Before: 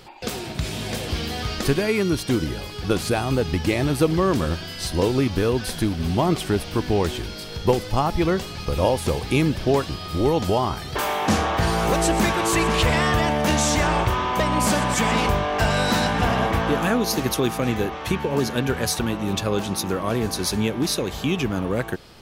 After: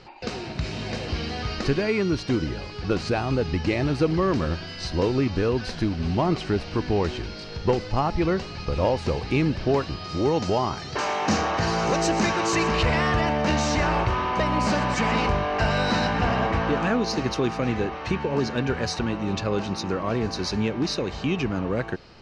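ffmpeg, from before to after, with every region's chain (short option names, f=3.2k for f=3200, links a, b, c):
-filter_complex "[0:a]asettb=1/sr,asplit=3[a][b][c];[a]atrim=end=10.044[d];[b]atrim=start=10.04:end=12.71,asetpts=PTS-STARTPTS,afade=t=in:d=0.004:c=qsin,afade=t=out:st=2.666:d=0.004:c=qsin,highpass=92,equalizer=f=6.5k:t=o:w=0.74:g=8.5[e];[c]atrim=start=12.706[f];[d][e]acrossfade=d=0.004:c1=hsin:c2=qsin[g];[g][f]acrossfade=d=0.004:c1=qsin:c2=hsin,lowpass=f=5.5k:w=0.5412,lowpass=f=5.5k:w=1.3066,bandreject=f=3.4k:w=6.7,acontrast=63,volume=-8dB"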